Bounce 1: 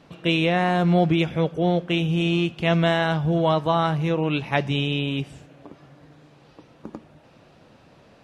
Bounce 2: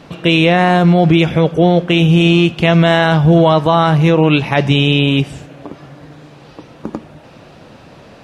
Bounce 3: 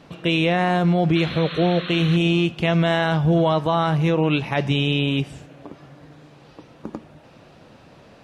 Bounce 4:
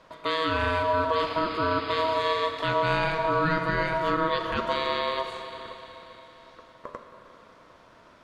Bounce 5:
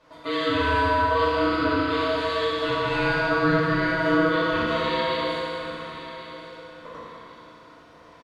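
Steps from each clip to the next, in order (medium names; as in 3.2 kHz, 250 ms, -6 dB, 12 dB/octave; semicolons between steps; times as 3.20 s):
loudness maximiser +14 dB; trim -1 dB
painted sound noise, 1.15–2.17 s, 1–4.3 kHz -26 dBFS; trim -8.5 dB
Schroeder reverb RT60 3.9 s, combs from 30 ms, DRR 5.5 dB; ring modulator 800 Hz; trim -4.5 dB
feedback delay 1093 ms, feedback 27%, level -14 dB; FDN reverb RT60 2.4 s, low-frequency decay 0.9×, high-frequency decay 0.9×, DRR -9 dB; trim -7 dB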